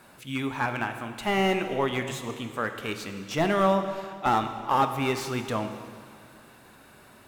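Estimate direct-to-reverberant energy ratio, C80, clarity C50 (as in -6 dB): 7.0 dB, 9.5 dB, 9.0 dB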